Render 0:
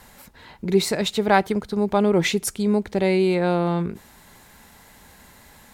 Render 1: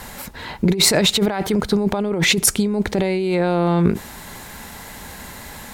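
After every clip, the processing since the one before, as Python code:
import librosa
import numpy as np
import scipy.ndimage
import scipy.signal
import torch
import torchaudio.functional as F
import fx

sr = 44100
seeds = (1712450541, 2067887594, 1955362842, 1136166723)

y = fx.over_compress(x, sr, threshold_db=-26.0, ratio=-1.0)
y = y * 10.0 ** (8.0 / 20.0)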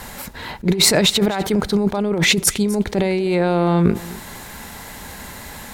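y = x + 10.0 ** (-19.0 / 20.0) * np.pad(x, (int(254 * sr / 1000.0), 0))[:len(x)]
y = fx.attack_slew(y, sr, db_per_s=340.0)
y = y * 10.0 ** (1.0 / 20.0)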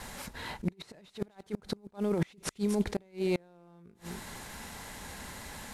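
y = fx.cvsd(x, sr, bps=64000)
y = fx.gate_flip(y, sr, shuts_db=-9.0, range_db=-31)
y = y * 10.0 ** (-9.0 / 20.0)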